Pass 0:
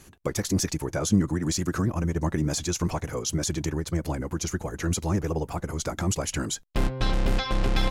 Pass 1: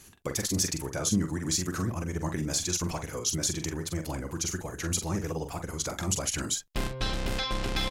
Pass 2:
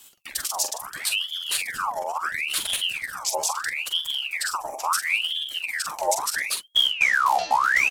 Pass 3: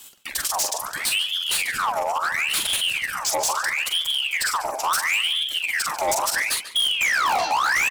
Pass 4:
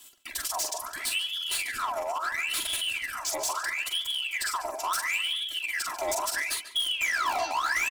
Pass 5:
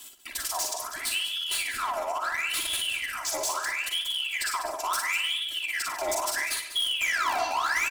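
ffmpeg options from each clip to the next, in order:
ffmpeg -i in.wav -filter_complex "[0:a]highshelf=frequency=2100:gain=8,asplit=2[link_01][link_02];[link_02]adelay=44,volume=-7.5dB[link_03];[link_01][link_03]amix=inputs=2:normalize=0,volume=-6dB" out.wav
ffmpeg -i in.wav -af "crystalizer=i=3.5:c=0,asubboost=boost=10:cutoff=210,aeval=exprs='val(0)*sin(2*PI*2000*n/s+2000*0.65/0.74*sin(2*PI*0.74*n/s))':channel_layout=same,volume=-5.5dB" out.wav
ffmpeg -i in.wav -filter_complex "[0:a]asplit=2[link_01][link_02];[link_02]aeval=exprs='0.422*sin(PI/2*2.24*val(0)/0.422)':channel_layout=same,volume=-12dB[link_03];[link_01][link_03]amix=inputs=2:normalize=0,asplit=2[link_04][link_05];[link_05]adelay=142,lowpass=frequency=3800:poles=1,volume=-12.5dB,asplit=2[link_06][link_07];[link_07]adelay=142,lowpass=frequency=3800:poles=1,volume=0.33,asplit=2[link_08][link_09];[link_09]adelay=142,lowpass=frequency=3800:poles=1,volume=0.33[link_10];[link_04][link_06][link_08][link_10]amix=inputs=4:normalize=0,asoftclip=type=hard:threshold=-18dB" out.wav
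ffmpeg -i in.wav -af "aecho=1:1:3:0.69,volume=-8.5dB" out.wav
ffmpeg -i in.wav -af "areverse,acompressor=mode=upward:threshold=-36dB:ratio=2.5,areverse,aecho=1:1:58.31|195.3:0.398|0.251" out.wav

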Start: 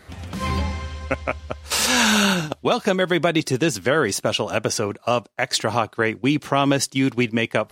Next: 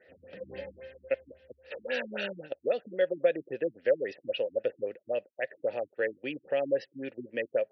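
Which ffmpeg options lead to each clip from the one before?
ffmpeg -i in.wav -filter_complex "[0:a]asplit=3[link_01][link_02][link_03];[link_01]bandpass=frequency=530:width_type=q:width=8,volume=0dB[link_04];[link_02]bandpass=frequency=1840:width_type=q:width=8,volume=-6dB[link_05];[link_03]bandpass=frequency=2480:width_type=q:width=8,volume=-9dB[link_06];[link_04][link_05][link_06]amix=inputs=3:normalize=0,afftfilt=real='re*lt(b*sr/1024,310*pow(6000/310,0.5+0.5*sin(2*PI*3.7*pts/sr)))':imag='im*lt(b*sr/1024,310*pow(6000/310,0.5+0.5*sin(2*PI*3.7*pts/sr)))':win_size=1024:overlap=0.75" out.wav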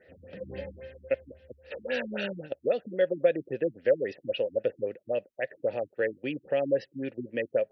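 ffmpeg -i in.wav -af "lowshelf=frequency=230:gain=11.5" out.wav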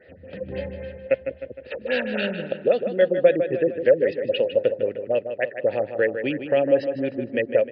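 ffmpeg -i in.wav -filter_complex "[0:a]asplit=2[link_01][link_02];[link_02]adelay=154,lowpass=frequency=4000:poles=1,volume=-8.5dB,asplit=2[link_03][link_04];[link_04]adelay=154,lowpass=frequency=4000:poles=1,volume=0.54,asplit=2[link_05][link_06];[link_06]adelay=154,lowpass=frequency=4000:poles=1,volume=0.54,asplit=2[link_07][link_08];[link_08]adelay=154,lowpass=frequency=4000:poles=1,volume=0.54,asplit=2[link_09][link_10];[link_10]adelay=154,lowpass=frequency=4000:poles=1,volume=0.54,asplit=2[link_11][link_12];[link_12]adelay=154,lowpass=frequency=4000:poles=1,volume=0.54[link_13];[link_03][link_05][link_07][link_09][link_11][link_13]amix=inputs=6:normalize=0[link_14];[link_01][link_14]amix=inputs=2:normalize=0,aresample=11025,aresample=44100,volume=7dB" out.wav

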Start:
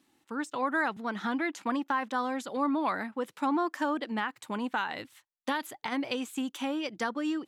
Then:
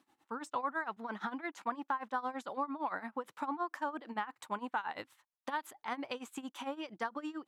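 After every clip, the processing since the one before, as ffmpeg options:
ffmpeg -i in.wav -af "tremolo=f=8.8:d=0.87,acompressor=threshold=-35dB:ratio=6,equalizer=frequency=980:width=0.77:gain=10,volume=-4.5dB" out.wav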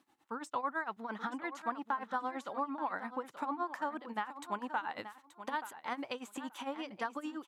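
ffmpeg -i in.wav -af "aecho=1:1:879|1758:0.251|0.0402" out.wav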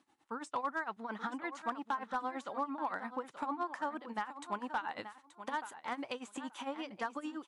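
ffmpeg -i in.wav -af "asoftclip=type=hard:threshold=-26.5dB" -ar 24000 -c:a libmp3lame -b:a 64k out.mp3

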